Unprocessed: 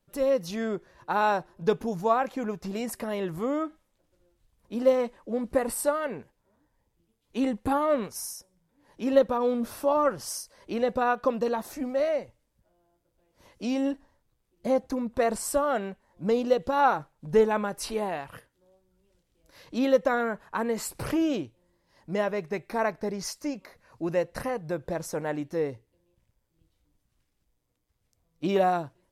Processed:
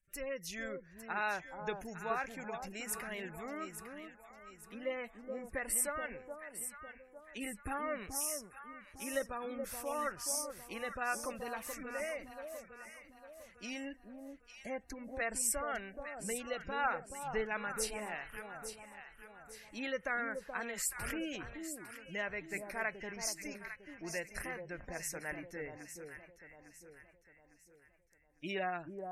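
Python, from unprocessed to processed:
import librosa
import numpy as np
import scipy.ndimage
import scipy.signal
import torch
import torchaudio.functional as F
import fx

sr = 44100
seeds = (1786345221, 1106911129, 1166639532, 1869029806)

y = fx.graphic_eq(x, sr, hz=(125, 250, 500, 1000, 2000, 4000, 8000), db=(-12, -11, -11, -11, 6, -7, 4))
y = fx.spec_gate(y, sr, threshold_db=-25, keep='strong')
y = fx.echo_alternate(y, sr, ms=427, hz=1000.0, feedback_pct=63, wet_db=-5.5)
y = y * 10.0 ** (-2.0 / 20.0)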